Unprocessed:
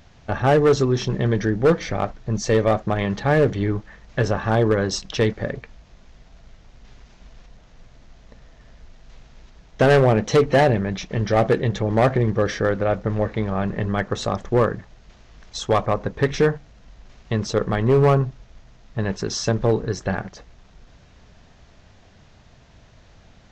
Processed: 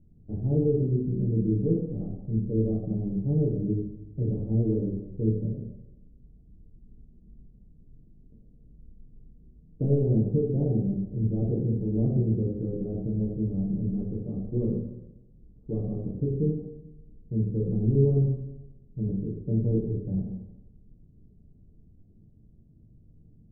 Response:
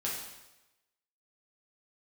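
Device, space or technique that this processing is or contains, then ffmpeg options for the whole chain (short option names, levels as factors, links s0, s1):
next room: -filter_complex "[0:a]lowpass=f=330:w=0.5412,lowpass=f=330:w=1.3066[s0];[1:a]atrim=start_sample=2205[s1];[s0][s1]afir=irnorm=-1:irlink=0,volume=0.473"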